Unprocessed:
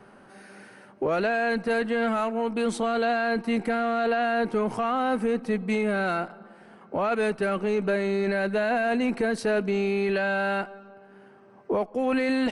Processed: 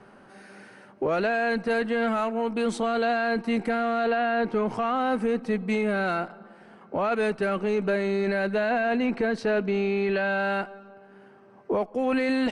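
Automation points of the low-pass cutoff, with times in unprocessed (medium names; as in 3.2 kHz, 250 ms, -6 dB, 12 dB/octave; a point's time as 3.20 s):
3.95 s 9 kHz
4.23 s 3.8 kHz
5.03 s 8.4 kHz
8.40 s 8.4 kHz
8.87 s 4.7 kHz
10.22 s 4.7 kHz
10.66 s 9.5 kHz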